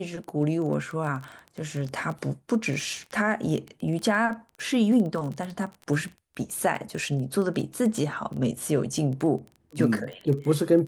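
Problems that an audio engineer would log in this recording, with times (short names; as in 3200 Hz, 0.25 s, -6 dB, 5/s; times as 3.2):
crackle 15/s -30 dBFS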